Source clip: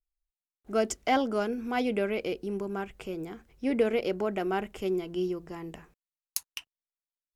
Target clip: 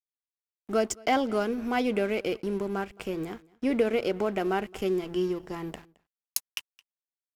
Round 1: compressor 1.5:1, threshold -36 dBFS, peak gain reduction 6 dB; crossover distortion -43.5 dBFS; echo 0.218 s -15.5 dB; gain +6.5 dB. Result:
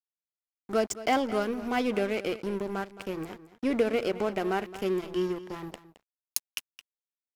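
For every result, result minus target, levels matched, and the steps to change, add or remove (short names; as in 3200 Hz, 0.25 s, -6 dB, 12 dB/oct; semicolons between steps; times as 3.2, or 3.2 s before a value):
echo-to-direct +9.5 dB; crossover distortion: distortion +7 dB
change: echo 0.218 s -25 dB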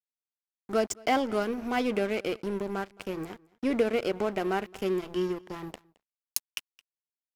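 crossover distortion: distortion +7 dB
change: crossover distortion -51.5 dBFS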